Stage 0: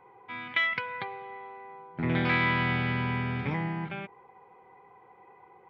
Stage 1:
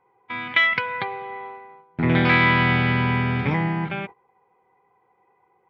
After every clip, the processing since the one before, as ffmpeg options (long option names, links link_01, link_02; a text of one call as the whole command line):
ffmpeg -i in.wav -af "agate=range=-17dB:threshold=-44dB:ratio=16:detection=peak,volume=8.5dB" out.wav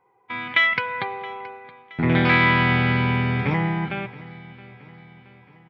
ffmpeg -i in.wav -af "aecho=1:1:672|1344|2016|2688:0.1|0.052|0.027|0.0141" out.wav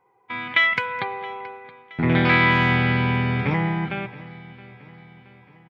ffmpeg -i in.wav -filter_complex "[0:a]asplit=2[link_01][link_02];[link_02]adelay=210,highpass=300,lowpass=3400,asoftclip=type=hard:threshold=-12.5dB,volume=-19dB[link_03];[link_01][link_03]amix=inputs=2:normalize=0" out.wav